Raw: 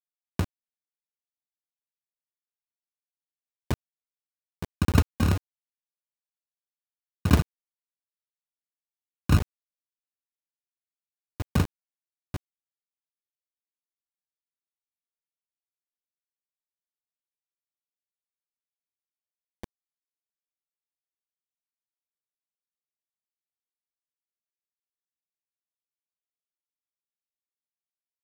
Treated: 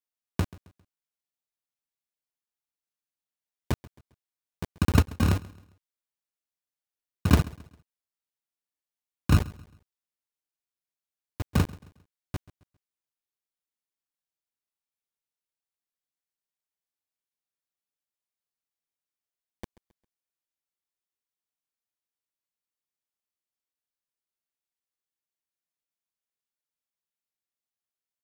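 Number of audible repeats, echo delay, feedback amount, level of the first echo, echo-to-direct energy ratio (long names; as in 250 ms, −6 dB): 2, 134 ms, 37%, −21.0 dB, −20.5 dB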